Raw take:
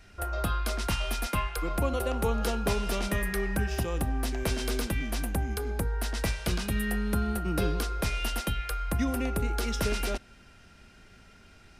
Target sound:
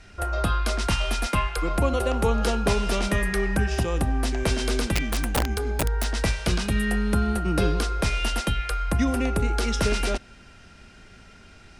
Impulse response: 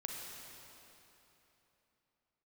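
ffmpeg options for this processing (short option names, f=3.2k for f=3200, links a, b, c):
-filter_complex "[0:a]lowpass=f=10k:w=0.5412,lowpass=f=10k:w=1.3066,asettb=1/sr,asplit=3[a][b][c];[a]atrim=end=4.934[d];[b]atrim=start=4.93:end=6.22,asetpts=PTS-STARTPTS,afade=t=in:d=0.004:c=qsin,afade=t=out:st=1.286:d=0.004:c=qsin,aeval=exprs='(mod(12.6*val(0)+1,2)-1)/12.6':c=same[e];[c]atrim=start=6.216[f];[d][e]acrossfade=d=0.004:c1=hsin:c2=qsin[g];[g][f]acrossfade=d=0.004:c1=qsin:c2=hsin,volume=5.5dB"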